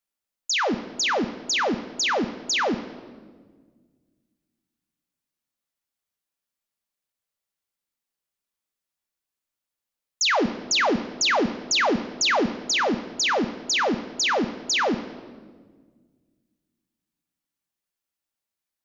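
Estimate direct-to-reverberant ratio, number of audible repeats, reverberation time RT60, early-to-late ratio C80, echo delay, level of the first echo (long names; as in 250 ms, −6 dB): 9.0 dB, no echo audible, 1.6 s, 14.0 dB, no echo audible, no echo audible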